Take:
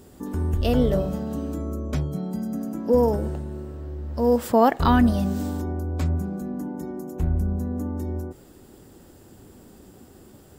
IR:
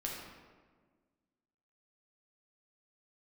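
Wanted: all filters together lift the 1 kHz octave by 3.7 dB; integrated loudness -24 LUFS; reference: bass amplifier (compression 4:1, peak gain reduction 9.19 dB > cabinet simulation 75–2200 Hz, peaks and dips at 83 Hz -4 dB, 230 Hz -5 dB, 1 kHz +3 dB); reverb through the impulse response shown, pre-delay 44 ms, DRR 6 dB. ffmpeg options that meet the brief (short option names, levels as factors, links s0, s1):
-filter_complex "[0:a]equalizer=f=1000:t=o:g=3,asplit=2[s0][s1];[1:a]atrim=start_sample=2205,adelay=44[s2];[s1][s2]afir=irnorm=-1:irlink=0,volume=0.422[s3];[s0][s3]amix=inputs=2:normalize=0,acompressor=threshold=0.1:ratio=4,highpass=f=75:w=0.5412,highpass=f=75:w=1.3066,equalizer=f=83:t=q:w=4:g=-4,equalizer=f=230:t=q:w=4:g=-5,equalizer=f=1000:t=q:w=4:g=3,lowpass=f=2200:w=0.5412,lowpass=f=2200:w=1.3066,volume=1.78"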